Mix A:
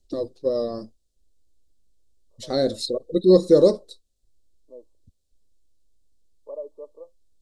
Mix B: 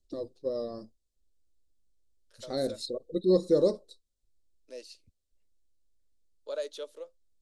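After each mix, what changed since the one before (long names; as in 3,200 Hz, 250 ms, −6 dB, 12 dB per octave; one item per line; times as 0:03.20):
first voice −9.0 dB
second voice: remove linear-phase brick-wall low-pass 1,200 Hz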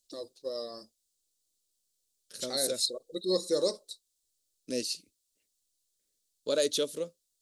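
second voice: remove four-pole ladder high-pass 570 Hz, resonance 25%
master: add spectral tilt +4.5 dB per octave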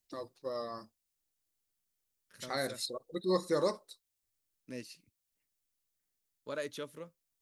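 second voice −9.5 dB
master: add graphic EQ with 10 bands 125 Hz +10 dB, 500 Hz −6 dB, 1,000 Hz +10 dB, 2,000 Hz +9 dB, 4,000 Hz −9 dB, 8,000 Hz −9 dB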